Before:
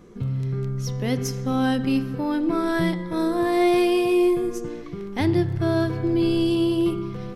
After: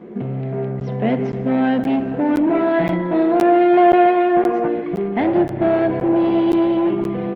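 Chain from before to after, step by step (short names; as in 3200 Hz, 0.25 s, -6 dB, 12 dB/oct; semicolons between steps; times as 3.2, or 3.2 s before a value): 3.77–4.68 band shelf 1000 Hz +12.5 dB; in parallel at +1 dB: compressor 12:1, threshold -27 dBFS, peak gain reduction 14 dB; on the sum: overloaded stage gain 19 dB; speaker cabinet 210–2700 Hz, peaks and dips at 210 Hz +8 dB, 370 Hz +3 dB, 670 Hz +9 dB, 1200 Hz -7 dB; feedback echo 0.401 s, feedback 50%, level -22 dB; on a send at -12 dB: reverb RT60 2.1 s, pre-delay 3 ms; on the sum: crackling interface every 0.52 s, samples 512, zero, from 0.8; gain +3.5 dB; Opus 24 kbps 48000 Hz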